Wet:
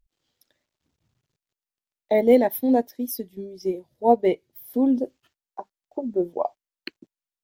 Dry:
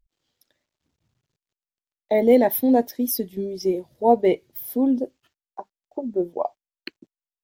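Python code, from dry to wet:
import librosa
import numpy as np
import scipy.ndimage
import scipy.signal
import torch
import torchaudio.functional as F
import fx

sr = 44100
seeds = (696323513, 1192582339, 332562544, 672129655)

y = fx.upward_expand(x, sr, threshold_db=-30.0, expansion=1.5, at=(2.21, 4.74))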